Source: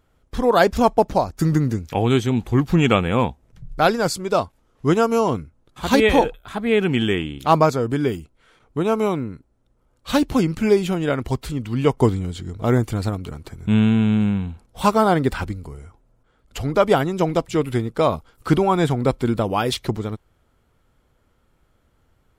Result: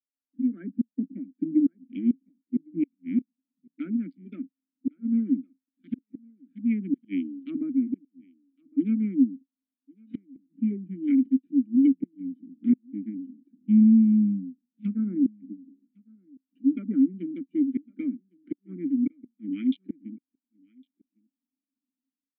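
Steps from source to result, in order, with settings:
adaptive Wiener filter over 41 samples
treble cut that deepens with the level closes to 1,900 Hz, closed at −14.5 dBFS
Butterworth high-pass 180 Hz 72 dB per octave
treble cut that deepens with the level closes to 1,300 Hz, closed at −13.5 dBFS
flat-topped bell 640 Hz −14 dB
automatic gain control gain up to 14 dB
formant filter i
gate with flip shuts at −12 dBFS, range −41 dB
on a send: single-tap delay 1,108 ms −19.5 dB
on the sum: every bin expanded away from the loudest bin 1.5 to 1

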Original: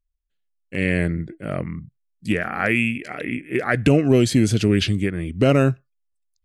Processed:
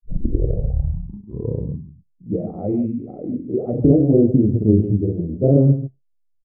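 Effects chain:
turntable start at the beginning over 1.93 s
double-tracking delay 29 ms −5.5 dB
on a send: single-tap delay 126 ms −11 dB
on the sum: granular cloud 100 ms, spray 27 ms, pitch spread up and down by 0 semitones
inverse Chebyshev low-pass filter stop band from 1,500 Hz, stop band 50 dB
level +2.5 dB

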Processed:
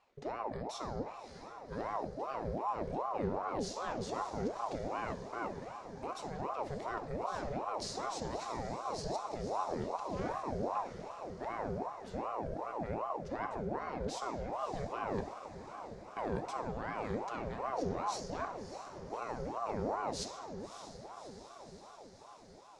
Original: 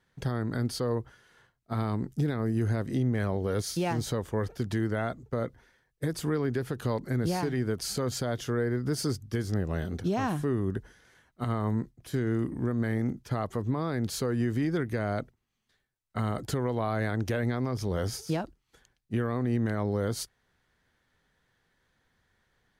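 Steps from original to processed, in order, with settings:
low-pass filter 7,500 Hz 24 dB per octave
parametric band 160 Hz +5.5 dB 1.4 octaves
brickwall limiter −20 dBFS, peak gain reduction 5 dB
reversed playback
downward compressor 6 to 1, threshold −36 dBFS, peak gain reduction 12 dB
reversed playback
feedback delay with all-pass diffusion 599 ms, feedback 68%, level −10.5 dB
on a send at −7 dB: convolution reverb RT60 1.0 s, pre-delay 3 ms
on the sum: ring modulator whose carrier an LFO sweeps 610 Hz, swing 55%, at 2.6 Hz
level +1 dB

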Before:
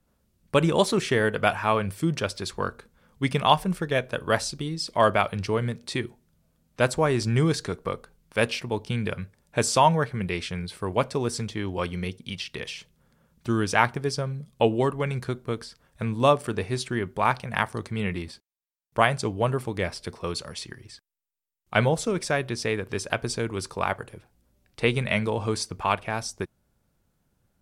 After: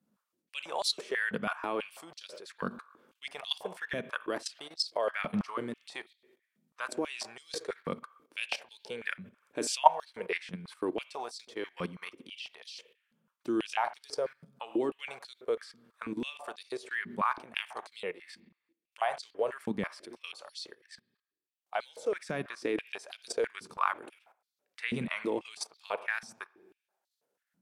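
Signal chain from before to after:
spring reverb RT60 1 s, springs 42/59 ms, chirp 70 ms, DRR 15.5 dB
output level in coarse steps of 15 dB
high-pass on a step sequencer 6.1 Hz 200–4,200 Hz
level −5 dB

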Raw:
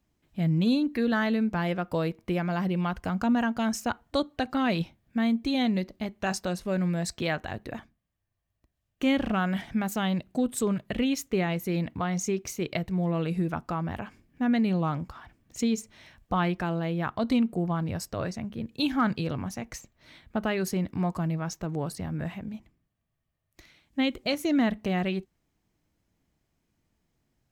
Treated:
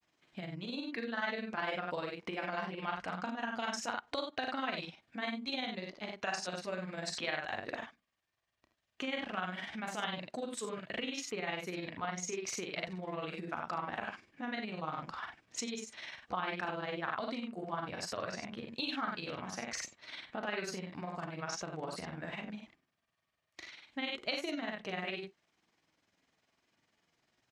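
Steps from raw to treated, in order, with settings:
on a send: ambience of single reflections 38 ms −4.5 dB, 77 ms −5 dB
on the sum: downward compressor 4 to 1, threshold −34 dBFS, peak gain reduction 15 dB
in parallel at +2.5 dB: brickwall limiter −29 dBFS, peak gain reduction 7 dB
on the sum: high-pass filter 1,000 Hz 6 dB per octave
granular cloud 78 ms, spray 13 ms, pitch spread up and down by 0 semitones
low-pass filter 5,400 Hz 12 dB per octave
level +1 dB

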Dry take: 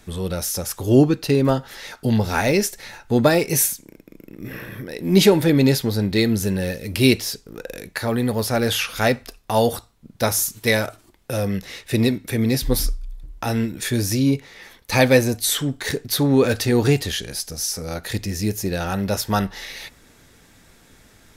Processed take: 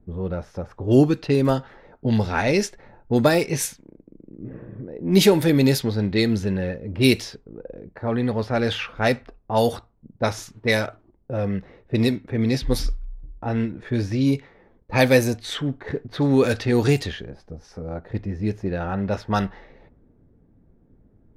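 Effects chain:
low-pass that shuts in the quiet parts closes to 350 Hz, open at −12.5 dBFS
level −1.5 dB

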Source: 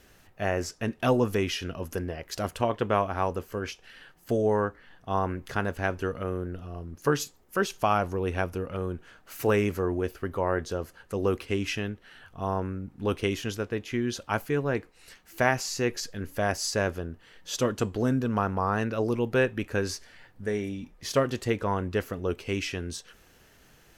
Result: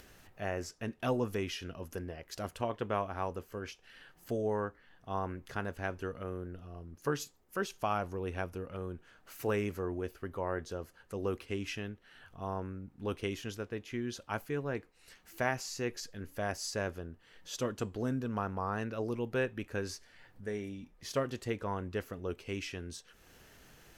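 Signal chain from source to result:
upward compression, threshold −40 dBFS
level −8.5 dB

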